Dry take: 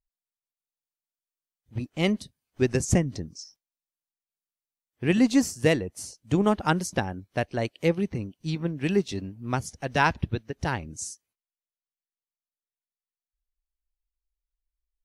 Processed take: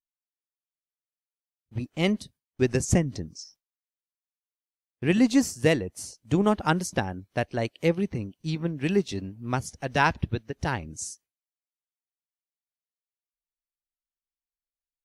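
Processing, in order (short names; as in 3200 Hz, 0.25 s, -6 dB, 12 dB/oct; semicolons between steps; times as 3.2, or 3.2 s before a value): gate with hold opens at -48 dBFS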